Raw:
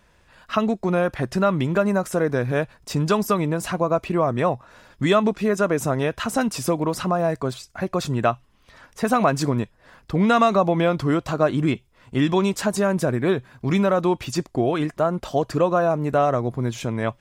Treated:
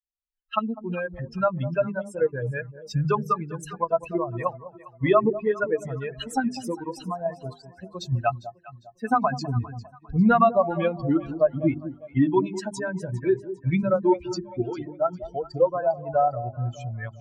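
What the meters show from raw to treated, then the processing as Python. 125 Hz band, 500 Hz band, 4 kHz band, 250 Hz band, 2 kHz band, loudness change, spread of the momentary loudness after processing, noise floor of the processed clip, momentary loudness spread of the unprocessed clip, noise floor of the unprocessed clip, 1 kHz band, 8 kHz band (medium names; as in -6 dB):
-4.0 dB, -3.5 dB, -9.0 dB, -4.5 dB, -5.5 dB, -3.5 dB, 12 LU, -55 dBFS, 7 LU, -58 dBFS, -2.5 dB, -11.0 dB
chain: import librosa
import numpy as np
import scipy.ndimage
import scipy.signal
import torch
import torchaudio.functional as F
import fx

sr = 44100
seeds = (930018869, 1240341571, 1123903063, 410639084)

p1 = fx.bin_expand(x, sr, power=3.0)
p2 = fx.env_lowpass_down(p1, sr, base_hz=1600.0, full_db=-22.5)
p3 = fx.level_steps(p2, sr, step_db=14)
p4 = p2 + (p3 * 10.0 ** (-1.0 / 20.0))
p5 = fx.high_shelf(p4, sr, hz=4300.0, db=-6.0)
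p6 = fx.hum_notches(p5, sr, base_hz=50, count=8)
p7 = p6 + fx.echo_alternate(p6, sr, ms=201, hz=810.0, feedback_pct=56, wet_db=-12, dry=0)
y = p7 * 10.0 ** (2.0 / 20.0)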